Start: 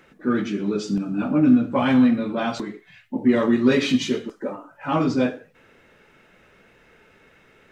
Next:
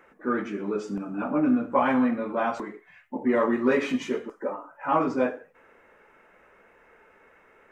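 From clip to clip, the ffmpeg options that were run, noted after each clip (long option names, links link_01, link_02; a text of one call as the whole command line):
ffmpeg -i in.wav -af "equalizer=frequency=125:width_type=o:width=1:gain=-8,equalizer=frequency=500:width_type=o:width=1:gain=5,equalizer=frequency=1000:width_type=o:width=1:gain=9,equalizer=frequency=2000:width_type=o:width=1:gain=5,equalizer=frequency=4000:width_type=o:width=1:gain=-11,volume=-7dB" out.wav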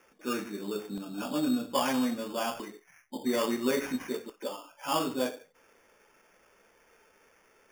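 ffmpeg -i in.wav -af "acrusher=samples=11:mix=1:aa=0.000001,volume=-6dB" out.wav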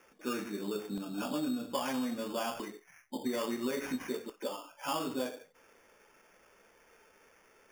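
ffmpeg -i in.wav -af "acompressor=threshold=-31dB:ratio=5" out.wav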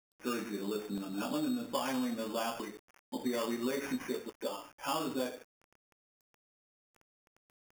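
ffmpeg -i in.wav -af "aeval=exprs='val(0)*gte(abs(val(0)),0.00224)':channel_layout=same" out.wav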